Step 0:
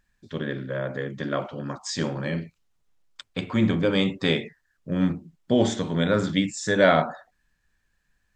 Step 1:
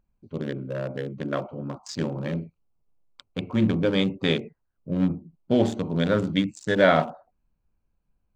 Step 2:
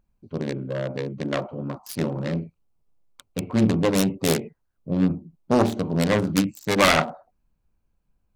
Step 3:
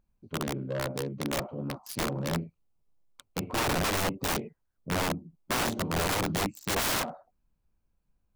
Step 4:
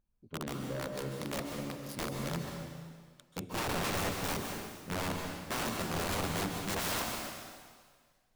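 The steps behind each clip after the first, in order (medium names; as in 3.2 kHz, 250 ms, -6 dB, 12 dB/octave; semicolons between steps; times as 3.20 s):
local Wiener filter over 25 samples
self-modulated delay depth 0.69 ms; trim +2.5 dB
integer overflow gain 19 dB; trim -4 dB
plate-style reverb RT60 1.7 s, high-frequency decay 1×, pre-delay 120 ms, DRR 2.5 dB; trim -7 dB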